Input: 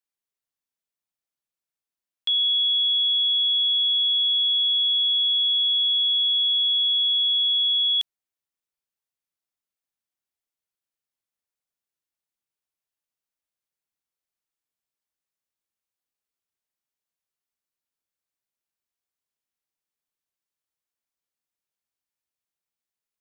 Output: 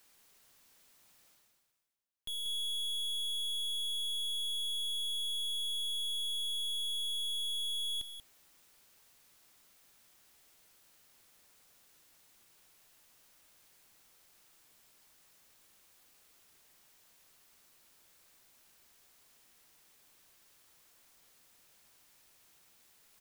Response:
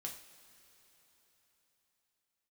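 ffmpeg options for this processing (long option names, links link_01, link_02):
-af "areverse,acompressor=mode=upward:threshold=-37dB:ratio=2.5,areverse,aeval=exprs='(tanh(70.8*val(0)+0.6)-tanh(0.6))/70.8':channel_layout=same,aecho=1:1:186:0.376,volume=-1.5dB"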